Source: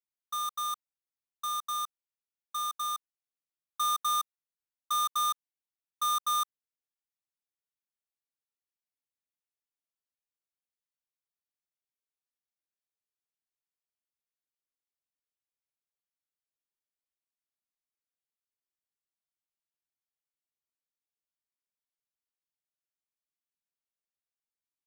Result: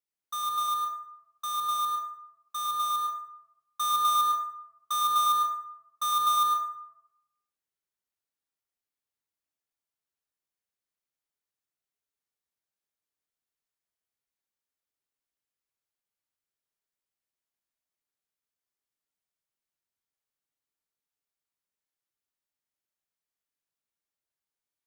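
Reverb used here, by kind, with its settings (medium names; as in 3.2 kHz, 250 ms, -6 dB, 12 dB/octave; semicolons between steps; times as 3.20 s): plate-style reverb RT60 0.88 s, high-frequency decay 0.45×, pre-delay 90 ms, DRR 0.5 dB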